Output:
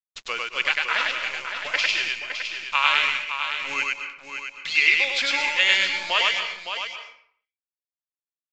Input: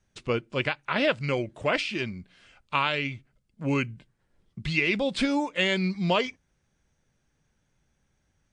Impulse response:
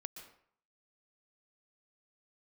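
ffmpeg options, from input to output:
-filter_complex "[0:a]highpass=1300,asettb=1/sr,asplit=3[s0][s1][s2];[s0]atrim=end=1.014[s3];[s1]atrim=start=1.01:end=1.74,asetpts=PTS-STARTPTS,afade=t=in:d=0.004:c=qsin,afade=t=out:st=0.726:d=0.004:c=qsin,acompressor=threshold=0.00891:ratio=4[s4];[s2]atrim=start=1.736[s5];[s3][s4]acrossfade=d=0.004:c1=hsin:c2=qsin[s6];[s6][s5]acrossfade=d=0.004:c1=qsin:c2=hsin,acrusher=bits=8:dc=4:mix=0:aa=0.000001,aecho=1:1:562:0.398,asplit=2[s7][s8];[1:a]atrim=start_sample=2205,lowshelf=f=460:g=-6,adelay=100[s9];[s8][s9]afir=irnorm=-1:irlink=0,volume=1.58[s10];[s7][s10]amix=inputs=2:normalize=0,aresample=16000,aresample=44100,volume=2.11"

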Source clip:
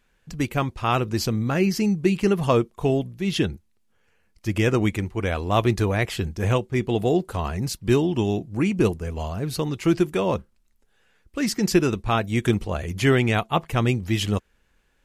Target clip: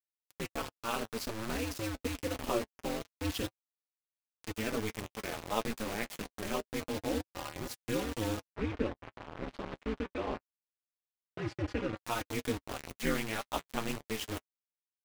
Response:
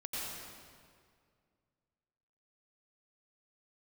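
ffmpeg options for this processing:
-filter_complex "[0:a]highpass=f=52:p=1,lowshelf=f=75:g=-11,aecho=1:1:553:0.0944,flanger=delay=5.1:depth=5.2:regen=-65:speed=0.56:shape=sinusoidal,acompressor=mode=upward:threshold=0.0126:ratio=2.5,acrusher=bits=4:mix=0:aa=0.000001,flanger=delay=4.4:depth=2.7:regen=36:speed=0.26:shape=sinusoidal,asettb=1/sr,asplit=3[s0][s1][s2];[s0]atrim=end=8.454[s3];[s1]atrim=start=8.45:end=11.97,asetpts=PTS-STARTPTS,afade=t=in:d=0.004:c=qsin,afade=t=out:st=3.516:d=0.004:c=qsin,lowpass=2500[s4];[s2]atrim=start=11.966[s5];[s3][s4]acrossfade=d=0.004:c1=hsin:c2=qsin[s6];[s6][s5]acrossfade=d=0.004:c1=qsin:c2=hsin,aeval=exprs='val(0)*sin(2*PI*110*n/s)':c=same,volume=0.794"

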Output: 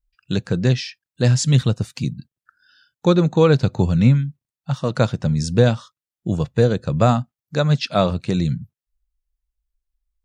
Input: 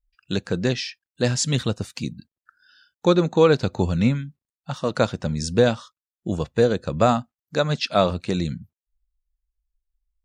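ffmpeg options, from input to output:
-af "equalizer=f=130:t=o:w=0.92:g=10"

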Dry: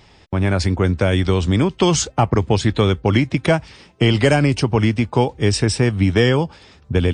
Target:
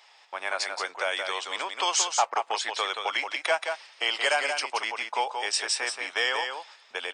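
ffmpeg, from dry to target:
-af "highpass=f=700:w=0.5412,highpass=f=700:w=1.3066,aecho=1:1:177:0.501,volume=0.668"

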